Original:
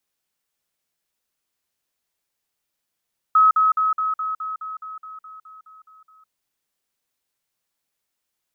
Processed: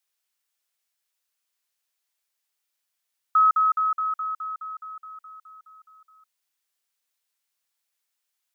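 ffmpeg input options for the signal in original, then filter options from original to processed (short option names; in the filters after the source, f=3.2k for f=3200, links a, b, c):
-f lavfi -i "aevalsrc='pow(10,(-10.5-3*floor(t/0.21))/20)*sin(2*PI*1280*t)*clip(min(mod(t,0.21),0.16-mod(t,0.21))/0.005,0,1)':d=2.94:s=44100"
-af "highpass=f=1.3k:p=1"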